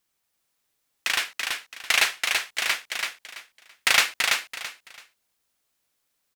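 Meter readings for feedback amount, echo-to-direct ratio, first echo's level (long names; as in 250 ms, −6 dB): 25%, −3.5 dB, −4.0 dB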